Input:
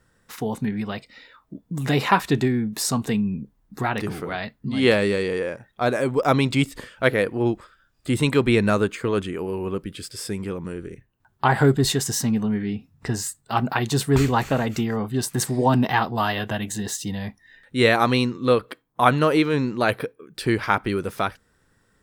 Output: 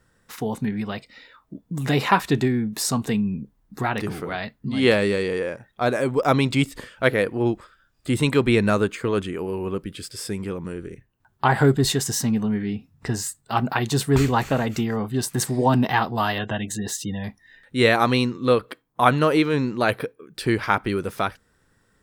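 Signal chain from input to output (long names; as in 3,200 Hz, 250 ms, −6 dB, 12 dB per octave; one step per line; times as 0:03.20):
0:16.38–0:17.24: gate on every frequency bin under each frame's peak −30 dB strong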